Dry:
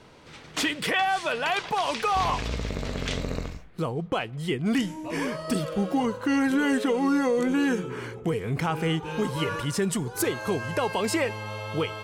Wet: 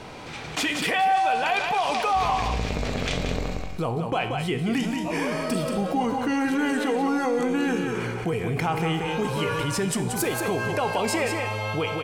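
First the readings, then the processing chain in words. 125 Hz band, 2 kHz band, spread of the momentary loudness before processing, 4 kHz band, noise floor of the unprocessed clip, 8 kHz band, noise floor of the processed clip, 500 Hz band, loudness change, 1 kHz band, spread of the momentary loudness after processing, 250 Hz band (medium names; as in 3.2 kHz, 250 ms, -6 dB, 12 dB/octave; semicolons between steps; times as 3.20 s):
+2.0 dB, +2.0 dB, 8 LU, +1.5 dB, -46 dBFS, +2.0 dB, -33 dBFS, +1.5 dB, +2.0 dB, +4.5 dB, 5 LU, 0.0 dB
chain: level rider gain up to 5.5 dB; feedback comb 59 Hz, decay 0.91 s, harmonics all, mix 60%; small resonant body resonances 760/2400 Hz, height 7 dB, ringing for 20 ms; on a send: delay 181 ms -7.5 dB; on the sum: level flattener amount 50%; trim -5 dB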